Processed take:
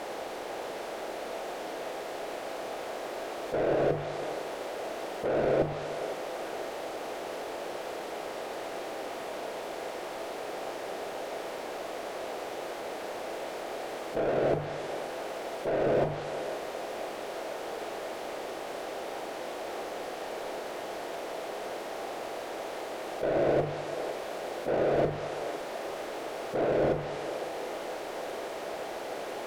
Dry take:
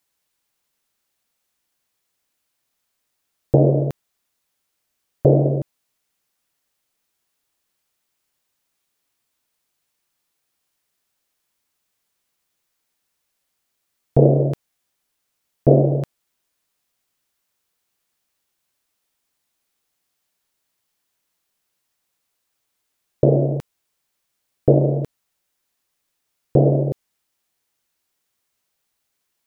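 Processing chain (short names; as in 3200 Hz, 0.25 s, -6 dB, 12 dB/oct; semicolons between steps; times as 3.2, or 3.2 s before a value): per-bin compression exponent 0.6; treble ducked by the level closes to 1000 Hz, closed at -12 dBFS; bell 130 Hz -14 dB 2.2 oct; notches 50/100/150 Hz; negative-ratio compressor -27 dBFS, ratio -1; overdrive pedal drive 29 dB, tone 1100 Hz, clips at -22 dBFS; split-band echo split 300 Hz, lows 0.1 s, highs 0.507 s, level -12 dB; reverb, pre-delay 3 ms, DRR 6.5 dB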